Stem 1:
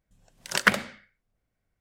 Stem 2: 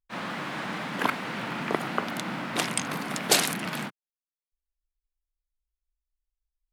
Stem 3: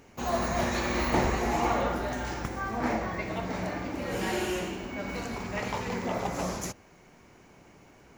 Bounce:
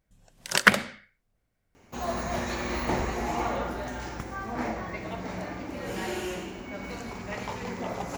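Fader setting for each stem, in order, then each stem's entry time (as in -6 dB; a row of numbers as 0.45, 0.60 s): +2.5 dB, off, -2.5 dB; 0.00 s, off, 1.75 s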